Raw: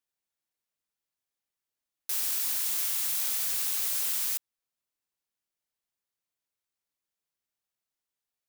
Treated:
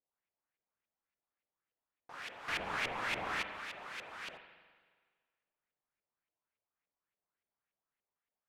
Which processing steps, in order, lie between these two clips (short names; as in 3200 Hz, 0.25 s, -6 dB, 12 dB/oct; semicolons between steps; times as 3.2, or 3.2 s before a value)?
2.48–3.42 sample leveller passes 3; LFO low-pass saw up 3.5 Hz 510–2600 Hz; spring tank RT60 1.6 s, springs 41/46 ms, chirp 45 ms, DRR 7.5 dB; gain -2 dB